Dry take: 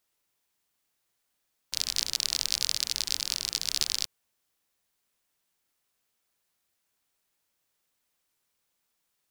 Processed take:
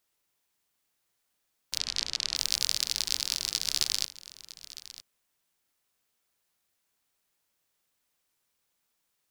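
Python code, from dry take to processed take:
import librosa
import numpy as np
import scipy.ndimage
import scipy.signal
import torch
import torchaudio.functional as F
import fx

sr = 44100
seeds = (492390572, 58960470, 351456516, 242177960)

y = fx.lowpass(x, sr, hz=5500.0, slope=12, at=(1.77, 2.35), fade=0.02)
y = y + 10.0 ** (-16.5 / 20.0) * np.pad(y, (int(957 * sr / 1000.0), 0))[:len(y)]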